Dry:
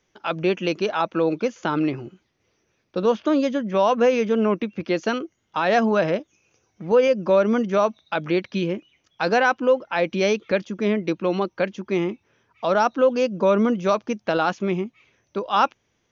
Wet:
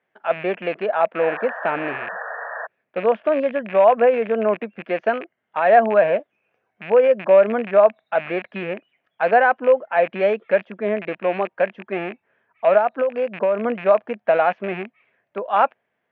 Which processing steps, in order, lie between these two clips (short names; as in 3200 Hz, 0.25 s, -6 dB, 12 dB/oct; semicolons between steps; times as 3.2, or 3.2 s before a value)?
rattling part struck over -36 dBFS, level -19 dBFS; dynamic EQ 590 Hz, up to +6 dB, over -32 dBFS, Q 0.95; 1.19–2.67 painted sound noise 440–1900 Hz -31 dBFS; 12.77–13.65 compressor 6:1, threshold -15 dBFS, peak gain reduction 8 dB; speaker cabinet 210–2600 Hz, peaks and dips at 320 Hz -8 dB, 670 Hz +8 dB, 1700 Hz +7 dB; gain -3.5 dB